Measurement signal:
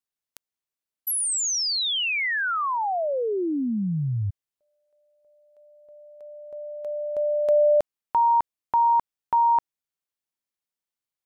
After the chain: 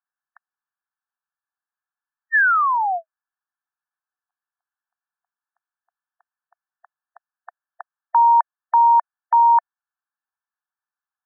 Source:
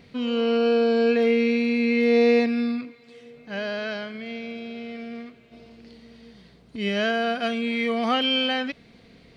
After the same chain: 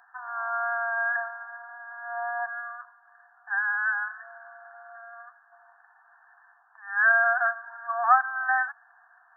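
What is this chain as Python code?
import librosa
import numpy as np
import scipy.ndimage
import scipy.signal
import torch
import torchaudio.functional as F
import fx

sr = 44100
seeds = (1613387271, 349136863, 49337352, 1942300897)

y = fx.brickwall_bandpass(x, sr, low_hz=690.0, high_hz=1800.0)
y = fx.tilt_shelf(y, sr, db=-9.0, hz=1200.0)
y = y * librosa.db_to_amplitude(8.0)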